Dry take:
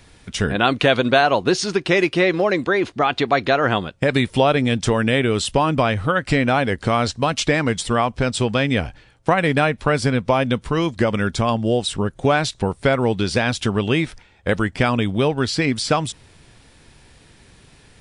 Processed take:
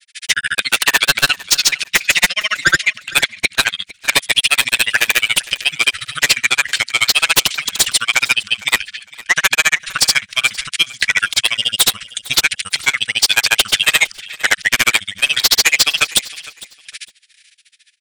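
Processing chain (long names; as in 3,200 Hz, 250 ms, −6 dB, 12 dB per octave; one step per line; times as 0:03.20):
noise gate with hold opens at −37 dBFS
inverse Chebyshev high-pass filter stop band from 990 Hz, stop band 40 dB
in parallel at +1 dB: downward compressor, threshold −36 dBFS, peak gain reduction 17.5 dB
on the sum: sine wavefolder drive 19 dB, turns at −3.5 dBFS
granular cloud 55 ms, grains 14 per second, pitch spread up and down by 0 semitones
on a send: repeating echo 456 ms, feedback 23%, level −20 dB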